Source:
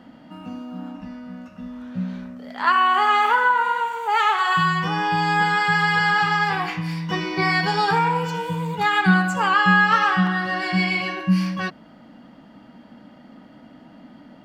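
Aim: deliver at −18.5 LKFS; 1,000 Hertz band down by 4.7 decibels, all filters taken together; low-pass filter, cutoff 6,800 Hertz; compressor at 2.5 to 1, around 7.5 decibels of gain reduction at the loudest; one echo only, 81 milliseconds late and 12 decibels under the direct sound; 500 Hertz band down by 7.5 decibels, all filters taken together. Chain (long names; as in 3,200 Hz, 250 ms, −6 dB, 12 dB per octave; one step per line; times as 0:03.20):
low-pass filter 6,800 Hz
parametric band 500 Hz −9 dB
parametric band 1,000 Hz −3.5 dB
downward compressor 2.5 to 1, threshold −25 dBFS
single-tap delay 81 ms −12 dB
level +8.5 dB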